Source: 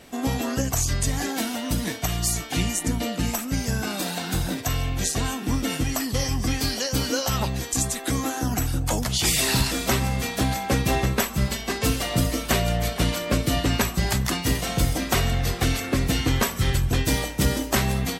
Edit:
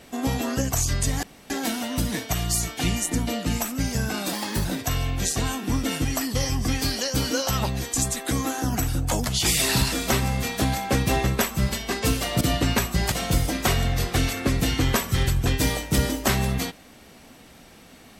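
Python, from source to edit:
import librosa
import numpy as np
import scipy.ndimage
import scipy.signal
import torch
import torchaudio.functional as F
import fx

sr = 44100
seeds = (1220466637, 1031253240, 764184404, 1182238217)

y = fx.edit(x, sr, fx.insert_room_tone(at_s=1.23, length_s=0.27),
    fx.speed_span(start_s=4.06, length_s=0.38, speed=1.19),
    fx.cut(start_s=12.2, length_s=1.24),
    fx.cut(start_s=14.15, length_s=0.44), tone=tone)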